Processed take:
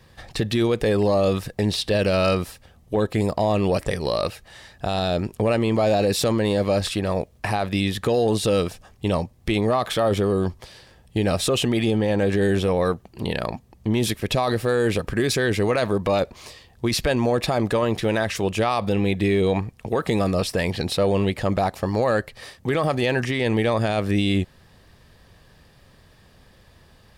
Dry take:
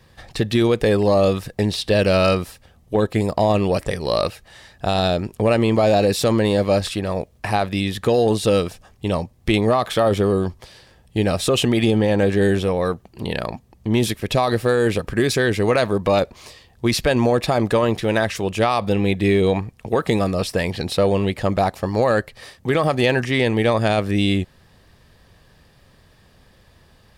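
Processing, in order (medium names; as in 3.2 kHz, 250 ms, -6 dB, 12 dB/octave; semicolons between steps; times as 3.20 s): peak limiter -12.5 dBFS, peak gain reduction 7 dB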